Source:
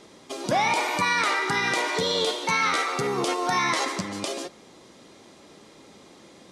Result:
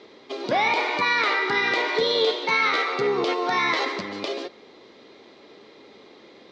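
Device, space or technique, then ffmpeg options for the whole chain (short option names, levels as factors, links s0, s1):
guitar cabinet: -af "highpass=100,equalizer=f=110:t=q:w=4:g=-6,equalizer=f=170:t=q:w=4:g=-10,equalizer=f=430:t=q:w=4:g=7,equalizer=f=2100:t=q:w=4:g=4,equalizer=f=4000:t=q:w=4:g=4,lowpass=f=4600:w=0.5412,lowpass=f=4600:w=1.3066"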